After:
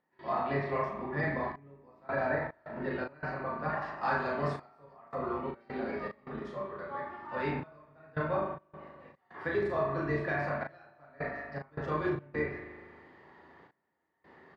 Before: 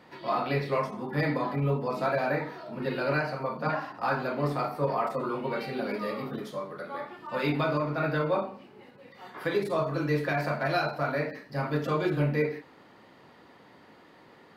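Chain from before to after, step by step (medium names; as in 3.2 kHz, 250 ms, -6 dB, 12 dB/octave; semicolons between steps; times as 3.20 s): octave divider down 2 oct, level -2 dB; cabinet simulation 120–8100 Hz, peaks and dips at 160 Hz +6 dB, 410 Hz +4 dB, 790 Hz +5 dB, 1.1 kHz +4 dB, 1.8 kHz +10 dB; upward compressor, threshold -46 dBFS; treble shelf 3.2 kHz -10 dB, from 3.82 s +3.5 dB, from 4.93 s -8.5 dB; reverberation RT60 1.8 s, pre-delay 39 ms, DRR 5.5 dB; trance gate ".xxxxxxx...xx.xx" 79 bpm -24 dB; doubling 36 ms -4.5 dB; trim -8.5 dB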